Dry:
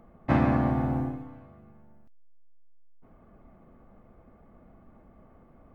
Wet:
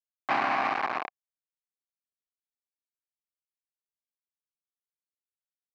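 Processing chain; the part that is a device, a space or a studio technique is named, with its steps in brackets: hand-held game console (bit-crush 4-bit; speaker cabinet 470–4000 Hz, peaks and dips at 510 Hz -7 dB, 760 Hz +9 dB, 1100 Hz +8 dB, 1600 Hz +5 dB, 2300 Hz +7 dB, 3400 Hz -8 dB); gain -5 dB

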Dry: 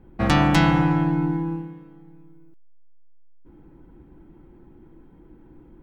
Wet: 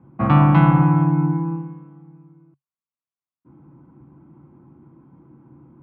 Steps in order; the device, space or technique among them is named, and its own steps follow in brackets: bass cabinet (speaker cabinet 83–2300 Hz, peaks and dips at 140 Hz +10 dB, 250 Hz +4 dB, 420 Hz -7 dB, 1100 Hz +9 dB, 1800 Hz -9 dB)

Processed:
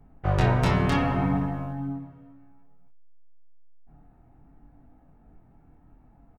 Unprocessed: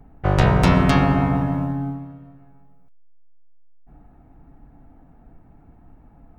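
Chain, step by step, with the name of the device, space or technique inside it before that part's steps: double-tracked vocal (doubler 32 ms -12 dB; chorus 0.61 Hz, delay 20 ms, depth 5.3 ms); gain -3.5 dB

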